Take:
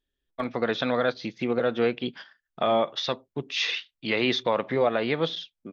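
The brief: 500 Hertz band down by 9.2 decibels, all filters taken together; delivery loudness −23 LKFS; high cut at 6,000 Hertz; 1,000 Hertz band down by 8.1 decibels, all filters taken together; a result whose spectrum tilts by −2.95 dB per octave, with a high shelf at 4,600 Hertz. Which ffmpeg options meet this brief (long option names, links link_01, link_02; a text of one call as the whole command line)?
ffmpeg -i in.wav -af "lowpass=6000,equalizer=frequency=500:width_type=o:gain=-9,equalizer=frequency=1000:width_type=o:gain=-7.5,highshelf=frequency=4600:gain=-6,volume=9dB" out.wav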